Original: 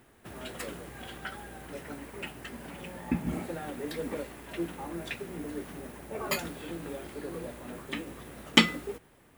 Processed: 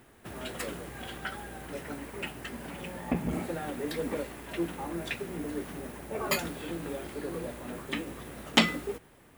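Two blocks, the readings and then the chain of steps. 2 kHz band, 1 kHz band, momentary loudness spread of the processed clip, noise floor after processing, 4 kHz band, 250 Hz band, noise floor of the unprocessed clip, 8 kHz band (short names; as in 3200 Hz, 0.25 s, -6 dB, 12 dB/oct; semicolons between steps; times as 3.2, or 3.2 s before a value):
-0.5 dB, +1.5 dB, 11 LU, -58 dBFS, -2.0 dB, 0.0 dB, -60 dBFS, +1.0 dB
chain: core saturation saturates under 2300 Hz; gain +2.5 dB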